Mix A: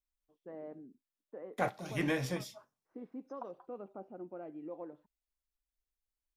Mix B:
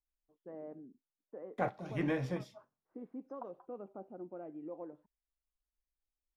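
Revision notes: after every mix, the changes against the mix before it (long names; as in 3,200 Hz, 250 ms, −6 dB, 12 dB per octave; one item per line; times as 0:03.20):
master: add low-pass filter 1,300 Hz 6 dB per octave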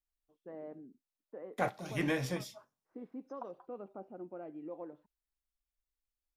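master: remove low-pass filter 1,300 Hz 6 dB per octave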